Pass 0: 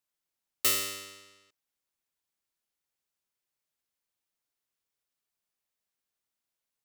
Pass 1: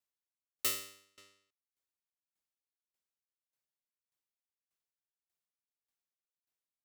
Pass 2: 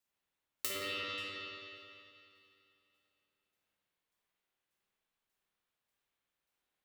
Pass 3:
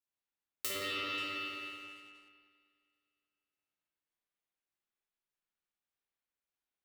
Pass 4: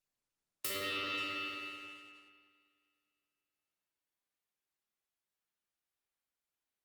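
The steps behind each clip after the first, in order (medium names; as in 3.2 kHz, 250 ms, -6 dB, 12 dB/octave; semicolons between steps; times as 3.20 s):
sawtooth tremolo in dB decaying 1.7 Hz, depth 27 dB; trim -3 dB
spring tank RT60 2.7 s, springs 49/54 ms, chirp 35 ms, DRR -8.5 dB; compression 12:1, threshold -37 dBFS, peak gain reduction 10 dB; trim +2.5 dB
waveshaping leveller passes 2; on a send: bucket-brigade echo 199 ms, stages 4096, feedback 37%, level -5 dB; on the sum: trim -6 dB
Opus 32 kbps 48 kHz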